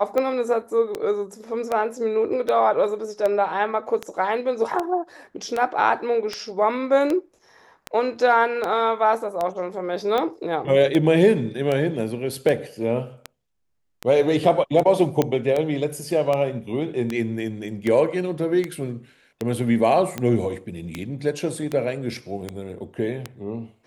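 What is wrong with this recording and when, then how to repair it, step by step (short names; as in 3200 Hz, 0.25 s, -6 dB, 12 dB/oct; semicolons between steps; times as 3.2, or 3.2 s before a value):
tick 78 rpm -12 dBFS
15.22 pop -7 dBFS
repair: de-click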